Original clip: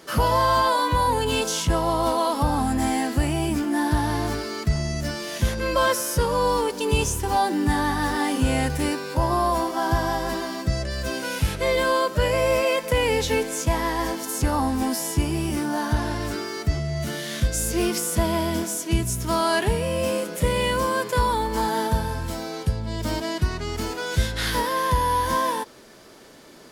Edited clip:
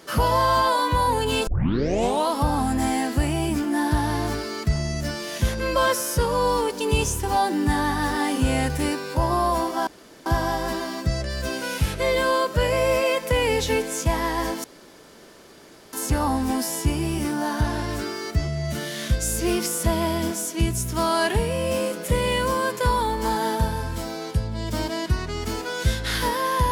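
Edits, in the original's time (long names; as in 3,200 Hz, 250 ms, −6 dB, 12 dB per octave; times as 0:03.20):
0:01.47: tape start 0.80 s
0:09.87: splice in room tone 0.39 s
0:14.25: splice in room tone 1.29 s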